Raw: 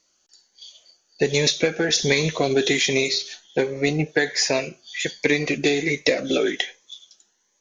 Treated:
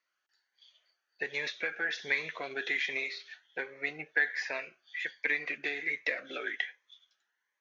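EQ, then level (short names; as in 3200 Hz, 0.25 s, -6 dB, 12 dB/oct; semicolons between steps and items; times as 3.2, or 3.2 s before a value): band-pass 1700 Hz, Q 2.3; air absorption 120 m; -2.0 dB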